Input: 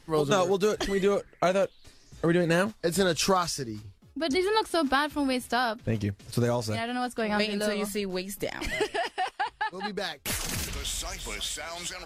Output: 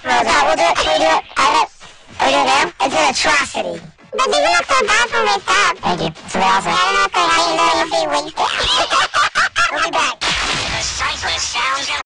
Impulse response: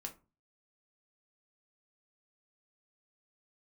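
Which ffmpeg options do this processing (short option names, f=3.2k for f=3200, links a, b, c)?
-filter_complex "[0:a]acrossover=split=480 2200:gain=0.141 1 0.2[a][b][c];[a][b][c]amix=inputs=3:normalize=0,apsyclip=22dB,asetrate=70004,aresample=44100,atempo=0.629961,aresample=16000,asoftclip=type=tanh:threshold=-14.5dB,aresample=44100,asplit=4[d][e][f][g];[e]asetrate=22050,aresample=44100,atempo=2,volume=-15dB[h];[f]asetrate=52444,aresample=44100,atempo=0.840896,volume=-6dB[i];[g]asetrate=55563,aresample=44100,atempo=0.793701,volume=-7dB[j];[d][h][i][j]amix=inputs=4:normalize=0,volume=2dB"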